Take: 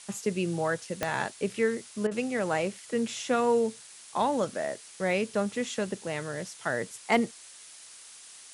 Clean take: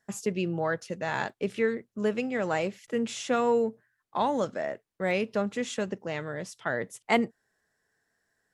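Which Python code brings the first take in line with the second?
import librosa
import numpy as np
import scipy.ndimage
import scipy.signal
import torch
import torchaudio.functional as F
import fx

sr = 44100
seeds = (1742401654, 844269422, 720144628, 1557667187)

y = fx.fix_declip(x, sr, threshold_db=-13.5)
y = fx.fix_declick_ar(y, sr, threshold=10.0)
y = fx.fix_interpolate(y, sr, at_s=(2.07,), length_ms=42.0)
y = fx.noise_reduce(y, sr, print_start_s=7.31, print_end_s=7.81, reduce_db=27.0)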